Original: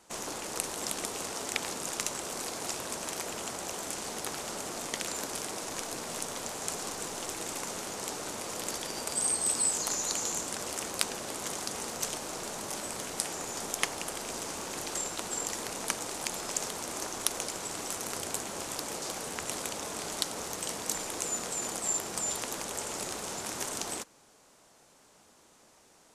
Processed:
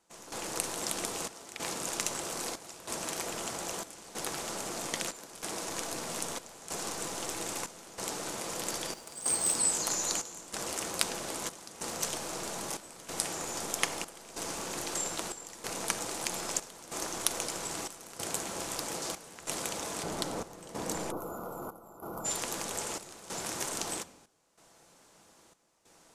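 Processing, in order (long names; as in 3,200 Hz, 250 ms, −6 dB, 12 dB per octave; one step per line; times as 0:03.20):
0:08.93–0:09.56: floating-point word with a short mantissa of 2 bits
0:20.03–0:21.17: tilt shelving filter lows +6 dB, about 1,300 Hz
rectangular room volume 3,000 cubic metres, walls furnished, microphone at 0.73 metres
gate pattern "..xxxxxx" 94 BPM −12 dB
0:21.11–0:22.25: gain on a spectral selection 1,500–11,000 Hz −26 dB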